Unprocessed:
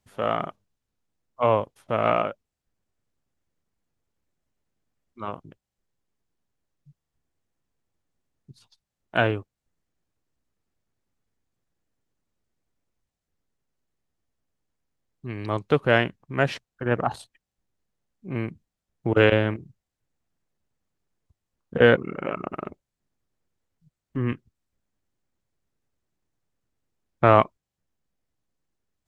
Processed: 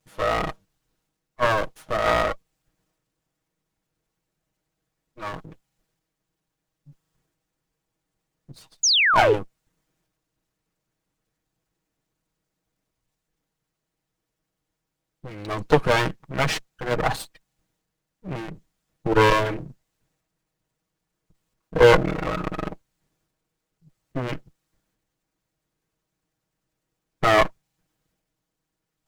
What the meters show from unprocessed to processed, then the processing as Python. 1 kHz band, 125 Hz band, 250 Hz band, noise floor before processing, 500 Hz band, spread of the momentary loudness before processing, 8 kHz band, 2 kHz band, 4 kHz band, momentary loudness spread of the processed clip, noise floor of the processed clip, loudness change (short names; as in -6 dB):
+3.0 dB, -1.0 dB, -1.5 dB, under -85 dBFS, +1.0 dB, 18 LU, n/a, +3.0 dB, +10.0 dB, 20 LU, -82 dBFS, +2.5 dB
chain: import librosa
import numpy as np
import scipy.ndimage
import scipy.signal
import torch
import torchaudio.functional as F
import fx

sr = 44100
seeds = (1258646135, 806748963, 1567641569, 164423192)

y = fx.lower_of_two(x, sr, delay_ms=6.3)
y = fx.spec_paint(y, sr, seeds[0], shape='fall', start_s=8.83, length_s=0.51, low_hz=370.0, high_hz=7100.0, level_db=-23.0)
y = fx.transient(y, sr, attack_db=0, sustain_db=6)
y = y * librosa.db_to_amplitude(5.0)